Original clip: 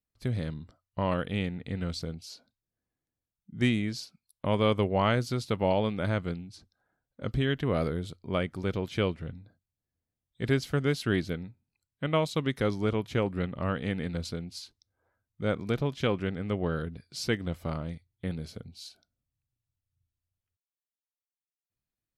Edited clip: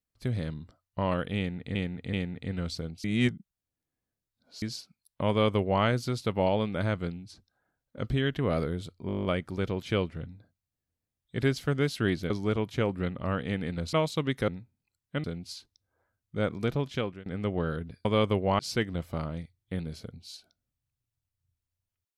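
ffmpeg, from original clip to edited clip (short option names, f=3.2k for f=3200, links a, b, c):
-filter_complex "[0:a]asplit=21[a][b][c][d][e][f][g][h][i][j][k][l][m][n][o][p][q][r][s][t][u];[a]atrim=end=1.752[v];[b]atrim=start=1.368:end=1.752[w];[c]atrim=start=1.368:end=2.282[x];[d]atrim=start=2.278:end=3.862,asetpts=PTS-STARTPTS,areverse[y];[e]atrim=start=3.858:end=8.332[z];[f]atrim=start=8.308:end=8.332[aa];[g]atrim=start=8.308:end=8.332[ab];[h]atrim=start=8.308:end=8.332[ac];[i]atrim=start=8.308:end=8.332[ad];[j]atrim=start=8.308:end=8.332[ae];[k]atrim=start=8.308:end=8.332[af];[l]atrim=start=8.308:end=8.332[ag];[m]atrim=start=8.308:end=8.332[ah];[n]atrim=start=8.308:end=11.362[ai];[o]atrim=start=12.668:end=14.302[aj];[p]atrim=start=12.118:end=12.672[ak];[q]atrim=start=11.358:end=12.122[al];[r]atrim=start=14.298:end=16.32,asetpts=PTS-STARTPTS,afade=t=out:st=1.632:d=0.39:silence=0.0630957[am];[s]atrim=start=16.32:end=17.112,asetpts=PTS-STARTPTS,afade=t=in:d=0.004:c=hsin:silence=0.0630957[an];[t]atrim=start=4.528:end=5.072[ao];[u]atrim=start=17.108[ap];[v][w]acrossfade=d=0.004:c1=hsin:c2=hsin[aq];[aq][x]acrossfade=d=0.004:c1=hsin:c2=hsin[ar];[ar][y]acrossfade=d=0.004:c1=hsin:c2=hsin[as];[as][z]acrossfade=d=0.004:c1=hsin:c2=hsin[at];[at][aa]acrossfade=d=0.004:c1=hsin:c2=hsin[au];[au][ab]acrossfade=d=0.004:c1=hsin:c2=hsin[av];[av][ac]acrossfade=d=0.004:c1=hsin:c2=hsin[aw];[aw][ad]acrossfade=d=0.004:c1=hsin:c2=hsin[ax];[ax][ae]acrossfade=d=0.004:c1=hsin:c2=hsin[ay];[ay][af]acrossfade=d=0.004:c1=hsin:c2=hsin[az];[az][ag]acrossfade=d=0.004:c1=hsin:c2=hsin[ba];[ba][ah]acrossfade=d=0.004:c1=hsin:c2=hsin[bb];[bb][ai]acrossfade=d=0.004:c1=hsin:c2=hsin[bc];[bc][aj]acrossfade=d=0.004:c1=hsin:c2=hsin[bd];[bd][ak]acrossfade=d=0.004:c1=hsin:c2=hsin[be];[be][al]acrossfade=d=0.004:c1=hsin:c2=hsin[bf];[am][an]concat=n=2:v=0:a=1[bg];[bf][bg]acrossfade=d=0.004:c1=hsin:c2=hsin[bh];[bh][ao]acrossfade=d=0.004:c1=hsin:c2=hsin[bi];[bi][ap]acrossfade=d=0.004:c1=hsin:c2=hsin"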